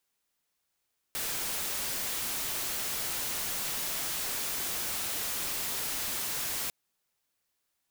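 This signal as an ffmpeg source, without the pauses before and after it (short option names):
-f lavfi -i "anoisesrc=c=white:a=0.0366:d=5.55:r=44100:seed=1"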